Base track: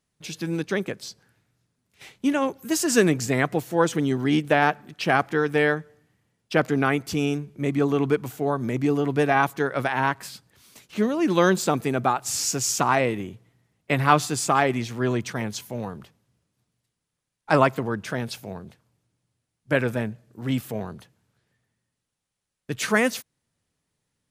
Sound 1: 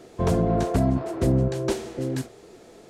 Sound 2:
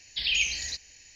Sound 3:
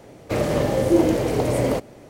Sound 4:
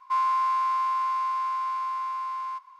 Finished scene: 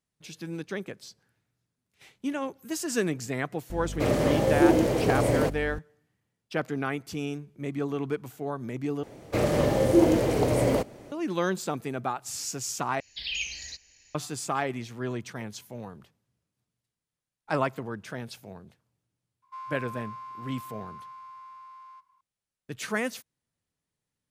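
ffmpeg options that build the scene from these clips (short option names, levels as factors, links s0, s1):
-filter_complex "[3:a]asplit=2[s0][s1];[0:a]volume=0.376[s2];[s0]aeval=exprs='val(0)+0.0282*(sin(2*PI*50*n/s)+sin(2*PI*2*50*n/s)/2+sin(2*PI*3*50*n/s)/3+sin(2*PI*4*50*n/s)/4+sin(2*PI*5*50*n/s)/5)':c=same[s3];[s2]asplit=3[s4][s5][s6];[s4]atrim=end=9.034[s7];[s1]atrim=end=2.09,asetpts=PTS-STARTPTS,volume=0.75[s8];[s5]atrim=start=11.116:end=13.004[s9];[2:a]atrim=end=1.15,asetpts=PTS-STARTPTS,volume=0.473[s10];[s6]atrim=start=14.146[s11];[s3]atrim=end=2.09,asetpts=PTS-STARTPTS,volume=0.708,afade=t=in:d=0.004:c=hsin,afade=t=out:st=2.086:d=0.004:c=hsin,adelay=3700[s12];[4:a]atrim=end=2.79,asetpts=PTS-STARTPTS,volume=0.158,afade=t=in:d=0.004:c=hsin,afade=t=out:st=2.786:d=0.004:c=hsin,adelay=19420[s13];[s7][s8]acrossfade=d=0.004:c1=hsin:c2=hsin[s14];[s14][s9]acrossfade=d=0.004:c1=hsin:c2=hsin[s15];[s15][s10]acrossfade=d=0.004:c1=hsin:c2=hsin[s16];[s16][s11]acrossfade=d=0.004:c1=hsin:c2=hsin[s17];[s17][s12][s13]amix=inputs=3:normalize=0"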